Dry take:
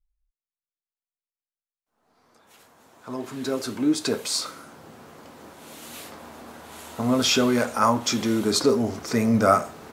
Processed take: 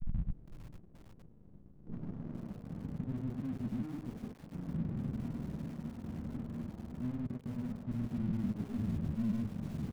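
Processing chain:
sign of each sample alone
transistor ladder low-pass 220 Hz, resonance 40%
dead-zone distortion −53.5 dBFS
granular cloud, grains 20 per second
repeating echo 231 ms, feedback 48%, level −23.5 dB
feedback echo at a low word length 454 ms, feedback 55%, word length 8 bits, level −14.5 dB
level +5 dB

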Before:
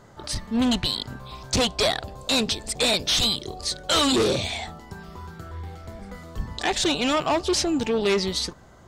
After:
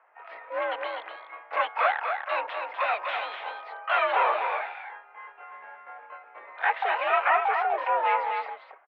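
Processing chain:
noise gate −38 dBFS, range −7 dB
pitch-shifted copies added +12 semitones −2 dB
on a send: single-tap delay 247 ms −5.5 dB
on the sum: single-sideband voice off tune +75 Hz 590–2,300 Hz
one half of a high-frequency compander decoder only

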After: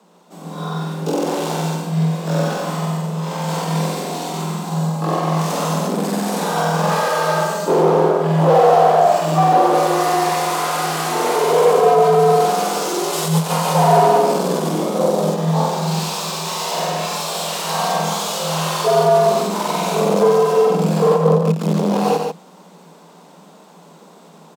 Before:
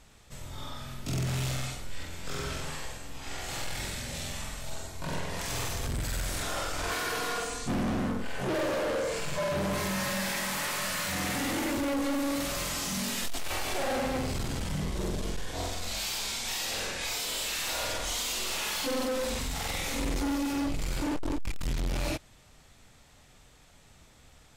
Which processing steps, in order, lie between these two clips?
loudspeakers that aren't time-aligned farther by 30 metres −9 dB, 49 metres −6 dB
frequency shifter +160 Hz
0:13.13–0:15.34: high-shelf EQ 6,700 Hz +7 dB
automatic gain control gain up to 7.5 dB
graphic EQ with 10 bands 125 Hz +8 dB, 250 Hz −6 dB, 500 Hz +11 dB, 1,000 Hz +9 dB, 2,000 Hz −7 dB
linearly interpolated sample-rate reduction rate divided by 2×

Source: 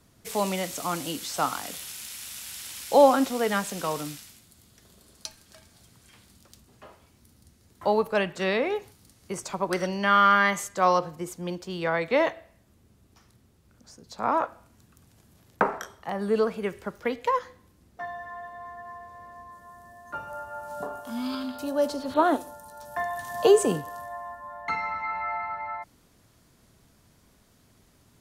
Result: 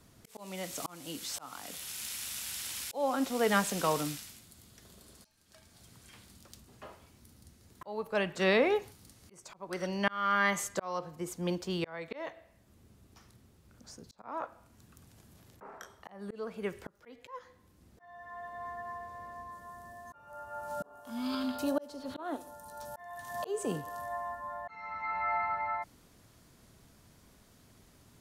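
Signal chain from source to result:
volume swells 686 ms

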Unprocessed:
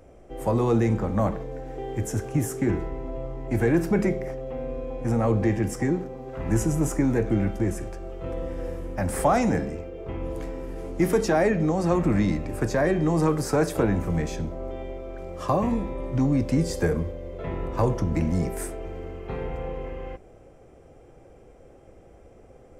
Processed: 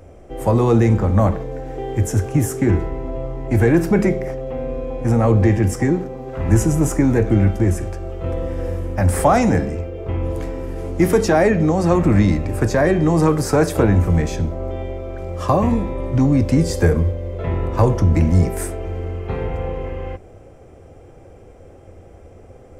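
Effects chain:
parametric band 90 Hz +9.5 dB 0.39 octaves
level +6.5 dB

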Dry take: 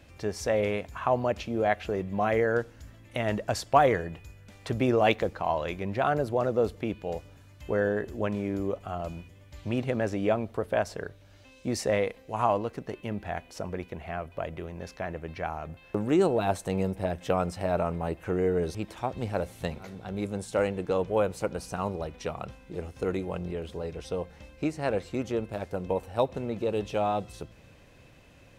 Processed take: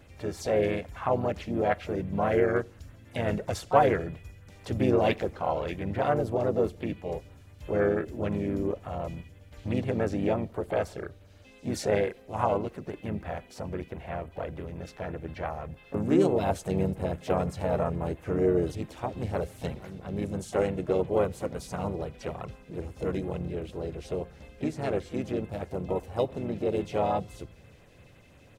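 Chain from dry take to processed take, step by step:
auto-filter notch sine 5.9 Hz 1,000–6,100 Hz
pitch-shifted copies added −4 semitones −4 dB, +5 semitones −13 dB
harmonic and percussive parts rebalanced harmonic +4 dB
level −3.5 dB

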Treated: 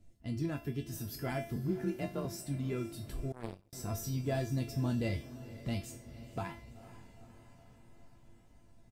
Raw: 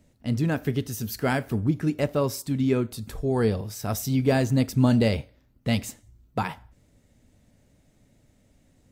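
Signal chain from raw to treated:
spectral magnitudes quantised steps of 15 dB
low-shelf EQ 140 Hz +11.5 dB
in parallel at +0.5 dB: downward compressor, threshold −31 dBFS, peak gain reduction 18.5 dB
on the sum: tuned comb filter 340 Hz, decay 0.38 s, harmonics all, mix 90%
0:01.56–0:02.25: frequency shifter +32 Hz
double-tracking delay 21 ms −10 dB
on a send: feedback delay with all-pass diffusion 490 ms, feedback 62%, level −15.5 dB
0:03.32–0:03.73: on the sum: power curve on the samples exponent 3

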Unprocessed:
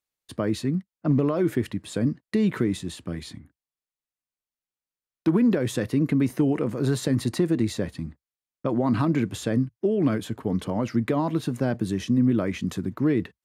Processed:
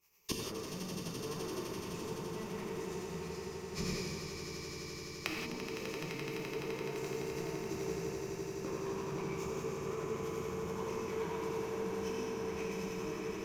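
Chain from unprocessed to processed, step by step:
peak hold with a decay on every bin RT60 1.83 s
0:05.29–0:05.75: parametric band 260 Hz +13 dB 0.96 octaves
downward compressor, threshold −20 dBFS, peak gain reduction 15.5 dB
EQ curve with evenly spaced ripples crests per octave 0.79, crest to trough 15 dB
two-band tremolo in antiphase 9.4 Hz, depth 70%, crossover 480 Hz
0:09.46–0:10.09: all-pass dispersion highs, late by 90 ms, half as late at 650 Hz
gain into a clipping stage and back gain 27 dB
gate with flip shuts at −35 dBFS, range −29 dB
on a send: echo that builds up and dies away 85 ms, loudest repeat 8, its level −11 dB
on the sum: reverb whose tail is shaped and stops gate 210 ms flat, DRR −1 dB
level +12 dB

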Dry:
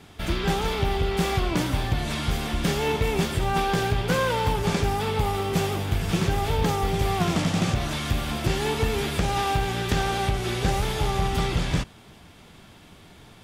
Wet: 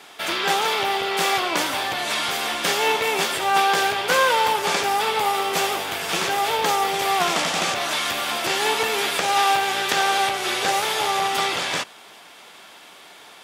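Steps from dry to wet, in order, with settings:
high-pass filter 610 Hz 12 dB per octave
level +8.5 dB

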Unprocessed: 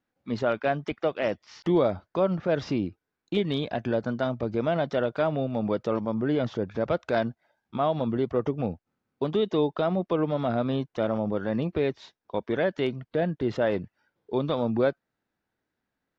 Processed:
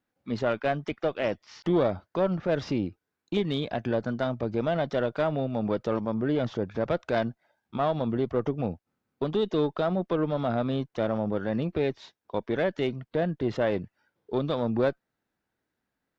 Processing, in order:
one-sided soft clipper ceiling −18.5 dBFS

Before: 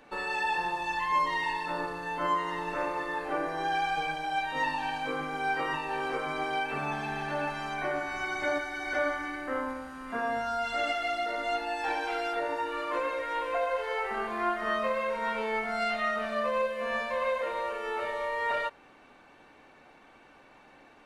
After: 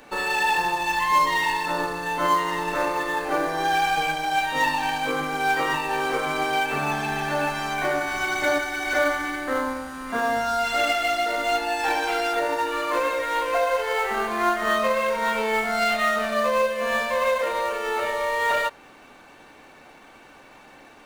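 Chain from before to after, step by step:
high-shelf EQ 3,700 Hz +10 dB
in parallel at −11.5 dB: sample-rate reduction 5,300 Hz, jitter 20%
on the sum: level +5 dB

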